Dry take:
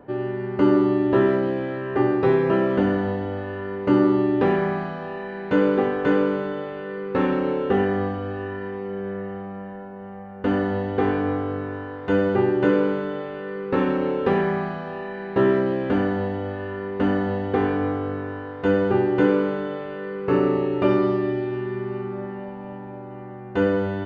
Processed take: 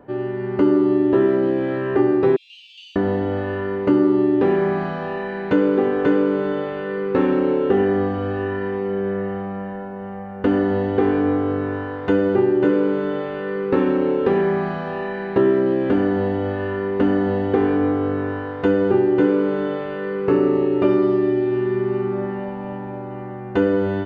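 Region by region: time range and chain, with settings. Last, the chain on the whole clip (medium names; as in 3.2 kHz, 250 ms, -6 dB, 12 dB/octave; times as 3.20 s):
2.36–2.96 s: steep high-pass 2.6 kHz 96 dB/octave + flutter echo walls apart 9.1 m, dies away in 0.5 s
whole clip: level rider gain up to 6 dB; dynamic bell 340 Hz, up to +7 dB, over -27 dBFS, Q 1.7; compression 2:1, threshold -19 dBFS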